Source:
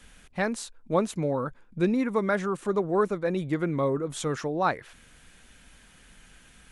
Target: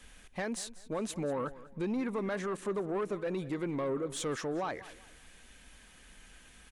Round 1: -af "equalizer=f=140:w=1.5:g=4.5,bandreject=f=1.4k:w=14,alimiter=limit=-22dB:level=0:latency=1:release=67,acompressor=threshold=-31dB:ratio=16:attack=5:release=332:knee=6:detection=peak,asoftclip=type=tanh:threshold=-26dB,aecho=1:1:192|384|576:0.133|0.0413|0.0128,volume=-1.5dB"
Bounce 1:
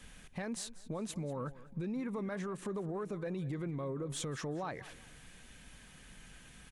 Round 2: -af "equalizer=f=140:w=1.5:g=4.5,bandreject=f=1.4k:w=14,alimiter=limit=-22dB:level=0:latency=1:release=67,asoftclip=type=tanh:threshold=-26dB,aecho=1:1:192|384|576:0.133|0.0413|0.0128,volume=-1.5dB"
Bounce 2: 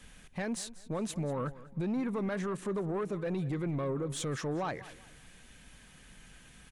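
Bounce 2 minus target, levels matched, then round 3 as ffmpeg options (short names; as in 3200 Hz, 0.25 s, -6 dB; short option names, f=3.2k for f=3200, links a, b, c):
125 Hz band +6.0 dB
-af "equalizer=f=140:w=1.5:g=-6.5,bandreject=f=1.4k:w=14,alimiter=limit=-22dB:level=0:latency=1:release=67,asoftclip=type=tanh:threshold=-26dB,aecho=1:1:192|384|576:0.133|0.0413|0.0128,volume=-1.5dB"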